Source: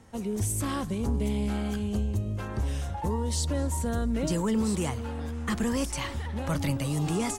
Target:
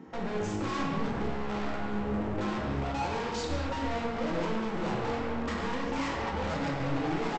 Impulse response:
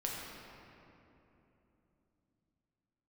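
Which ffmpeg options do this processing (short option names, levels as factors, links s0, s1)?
-filter_complex "[0:a]asplit=2[s0][s1];[s1]alimiter=level_in=1.88:limit=0.0631:level=0:latency=1:release=175,volume=0.531,volume=1[s2];[s0][s2]amix=inputs=2:normalize=0,highpass=76,afwtdn=0.0178,highshelf=f=3500:g=-9,bandreject=f=50:t=h:w=6,bandreject=f=100:t=h:w=6,bandreject=f=150:t=h:w=6,asplit=2[s3][s4];[s4]highpass=f=720:p=1,volume=28.2,asoftclip=type=tanh:threshold=0.168[s5];[s3][s5]amix=inputs=2:normalize=0,lowpass=f=2000:p=1,volume=0.501,aresample=16000,volume=28.2,asoftclip=hard,volume=0.0355,aresample=44100[s6];[1:a]atrim=start_sample=2205,afade=t=out:st=0.31:d=0.01,atrim=end_sample=14112[s7];[s6][s7]afir=irnorm=-1:irlink=0,volume=0.596"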